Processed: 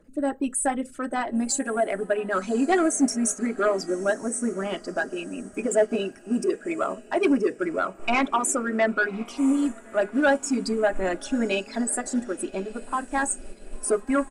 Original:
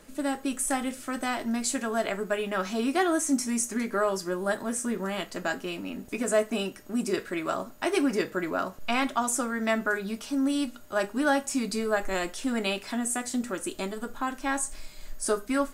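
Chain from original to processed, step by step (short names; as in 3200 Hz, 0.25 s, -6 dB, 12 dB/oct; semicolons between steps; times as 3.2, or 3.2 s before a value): formant sharpening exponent 2; tempo 1.1×; sine folder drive 3 dB, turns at -13 dBFS; diffused feedback echo 1.095 s, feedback 50%, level -16 dB; upward expander 1.5:1, over -39 dBFS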